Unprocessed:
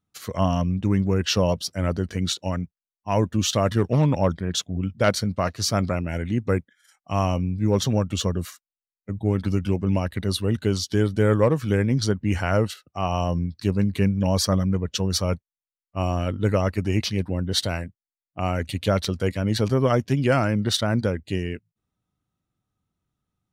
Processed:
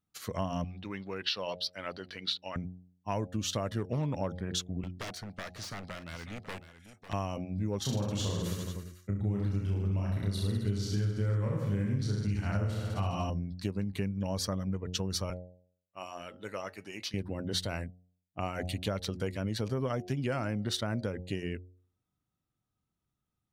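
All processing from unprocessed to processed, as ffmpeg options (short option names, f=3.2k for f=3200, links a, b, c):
-filter_complex "[0:a]asettb=1/sr,asplit=3[a][b][c];[a]atrim=end=0.644[d];[b]atrim=start=0.64:end=2.56,asetpts=PTS-STARTPTS,afade=t=in:d=0.004:c=qsin,afade=t=out:st=1.916:d=0.004:c=qsin,highpass=f=1.1k:p=1,highshelf=f=5.5k:t=q:w=3:g=-9.5[e];[c]atrim=start=2.556[f];[d][e]acrossfade=d=0.004:c1=hsin:c2=qsin[g];[g][f]acrossfade=d=0.004:c1=qsin:c2=hsin,asettb=1/sr,asplit=3[h][i][j];[h]atrim=end=4.834[k];[i]atrim=start=4.83:end=7.13,asetpts=PTS-STARTPTS,afade=t=in:d=0.004:c=qsin,afade=t=out:st=2.296:d=0.004:c=qsin,aeval=exprs='0.106*(abs(mod(val(0)/0.106+3,4)-2)-1)':c=same,acrossover=split=1200|2600[l][m][n];[l]acompressor=threshold=-38dB:ratio=4[o];[m]acompressor=threshold=-40dB:ratio=4[p];[n]acompressor=threshold=-42dB:ratio=4[q];[o][p][q]amix=inputs=3:normalize=0,aecho=1:1:549:0.237,atrim=end_sample=101430[r];[j]atrim=start=7.126[s];[k][r]acrossfade=d=0.004:c1=hsin:c2=qsin[t];[t][s]acrossfade=d=0.004:c1=qsin:c2=hsin,asettb=1/sr,asplit=3[u][v][w];[u]atrim=end=7.824[x];[v]atrim=start=7.82:end=13.3,asetpts=PTS-STARTPTS,afade=t=in:d=0.004:c=qsin,afade=t=out:st=5.476:d=0.004:c=qsin,asubboost=boost=3.5:cutoff=210,aecho=1:1:30|64.5|104.2|149.8|202.3|262.6|332|411.8|503.6:0.794|0.631|0.501|0.398|0.316|0.251|0.2|0.158|0.126,atrim=end_sample=241668[y];[w]atrim=start=13.296[z];[x][y]acrossfade=d=0.004:c1=hsin:c2=qsin[aa];[aa][z]acrossfade=d=0.004:c1=qsin:c2=hsin,asettb=1/sr,asplit=3[ab][ac][ad];[ab]atrim=end=15.304[ae];[ac]atrim=start=15.3:end=17.14,asetpts=PTS-STARTPTS,afade=t=in:d=0.004:c=qsin,afade=t=out:st=1.836:d=0.004:c=qsin,highpass=f=970:p=1,flanger=delay=4.4:depth=1.9:regen=-81:speed=1.1:shape=triangular[af];[ad]atrim=start=17.136[ag];[ae][af]acrossfade=d=0.004:c1=hsin:c2=qsin[ah];[ah][ag]acrossfade=d=0.004:c1=qsin:c2=hsin,bandreject=f=90.19:t=h:w=4,bandreject=f=180.38:t=h:w=4,bandreject=f=270.57:t=h:w=4,bandreject=f=360.76:t=h:w=4,bandreject=f=450.95:t=h:w=4,bandreject=f=541.14:t=h:w=4,bandreject=f=631.33:t=h:w=4,bandreject=f=721.52:t=h:w=4,bandreject=f=811.71:t=h:w=4,acompressor=threshold=-24dB:ratio=6,volume=-5dB"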